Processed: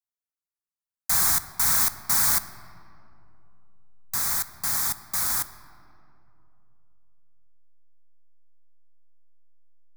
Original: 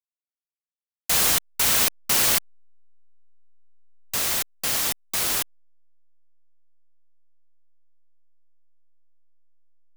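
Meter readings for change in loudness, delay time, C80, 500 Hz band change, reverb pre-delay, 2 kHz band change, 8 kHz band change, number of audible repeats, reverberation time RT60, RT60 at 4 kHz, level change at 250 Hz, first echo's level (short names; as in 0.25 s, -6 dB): -1.0 dB, none, 14.5 dB, -10.5 dB, 5 ms, -4.5 dB, -1.5 dB, none, 2.8 s, 1.4 s, -5.0 dB, none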